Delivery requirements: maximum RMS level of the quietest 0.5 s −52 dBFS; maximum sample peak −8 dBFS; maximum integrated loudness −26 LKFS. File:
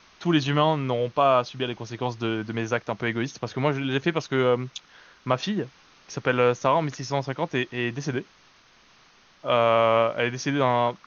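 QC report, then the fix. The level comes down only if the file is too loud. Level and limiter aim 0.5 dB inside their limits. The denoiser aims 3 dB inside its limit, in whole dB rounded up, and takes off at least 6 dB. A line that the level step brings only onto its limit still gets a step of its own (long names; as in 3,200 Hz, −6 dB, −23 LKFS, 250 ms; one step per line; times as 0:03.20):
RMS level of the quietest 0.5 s −57 dBFS: in spec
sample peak −6.0 dBFS: out of spec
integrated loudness −25.0 LKFS: out of spec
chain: level −1.5 dB
brickwall limiter −8.5 dBFS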